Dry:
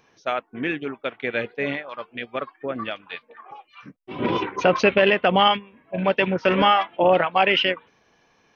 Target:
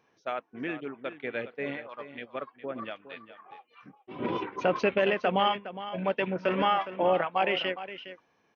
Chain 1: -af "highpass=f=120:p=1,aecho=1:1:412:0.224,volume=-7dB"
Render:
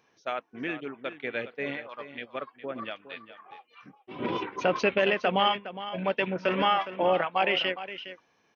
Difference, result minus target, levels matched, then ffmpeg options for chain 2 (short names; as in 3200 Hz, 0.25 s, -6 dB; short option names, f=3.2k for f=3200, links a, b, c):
4000 Hz band +3.0 dB
-af "highpass=f=120:p=1,highshelf=f=2.7k:g=-7.5,aecho=1:1:412:0.224,volume=-7dB"